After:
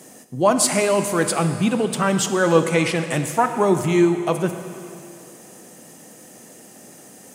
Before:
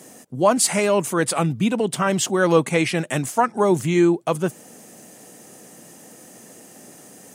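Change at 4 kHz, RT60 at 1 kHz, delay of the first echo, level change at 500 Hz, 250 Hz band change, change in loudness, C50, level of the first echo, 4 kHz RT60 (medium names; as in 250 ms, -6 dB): +0.5 dB, 2.7 s, no echo, +0.5 dB, +0.5 dB, +0.5 dB, 8.5 dB, no echo, 2.5 s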